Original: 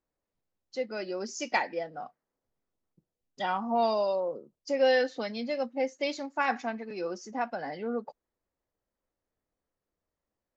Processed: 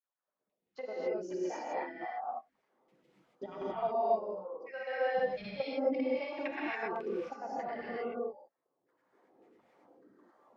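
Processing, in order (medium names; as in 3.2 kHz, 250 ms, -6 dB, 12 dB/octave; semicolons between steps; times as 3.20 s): recorder AGC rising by 23 dB/s; high-pass 120 Hz 24 dB/octave; LFO band-pass saw down 1.7 Hz 200–2500 Hz; reverb removal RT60 0.61 s; granulator, pitch spread up and down by 0 st; level held to a coarse grid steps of 10 dB; gated-style reverb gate 300 ms rising, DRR -7 dB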